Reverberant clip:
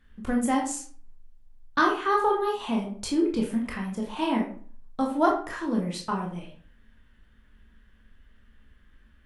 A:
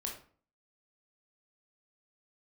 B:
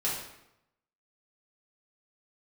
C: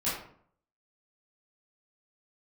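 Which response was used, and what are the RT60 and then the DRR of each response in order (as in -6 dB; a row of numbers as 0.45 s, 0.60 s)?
A; 0.45 s, 0.85 s, 0.60 s; -0.5 dB, -8.0 dB, -11.5 dB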